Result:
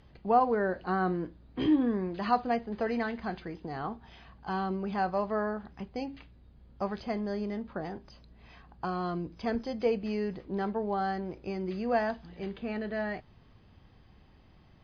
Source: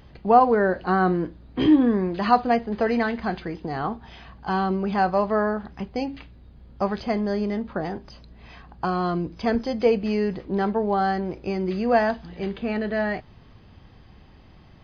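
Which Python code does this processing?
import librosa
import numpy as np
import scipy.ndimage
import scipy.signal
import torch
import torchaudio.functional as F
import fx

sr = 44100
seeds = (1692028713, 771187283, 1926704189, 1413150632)

y = scipy.signal.sosfilt(scipy.signal.butter(2, 11000.0, 'lowpass', fs=sr, output='sos'), x)
y = y * 10.0 ** (-8.5 / 20.0)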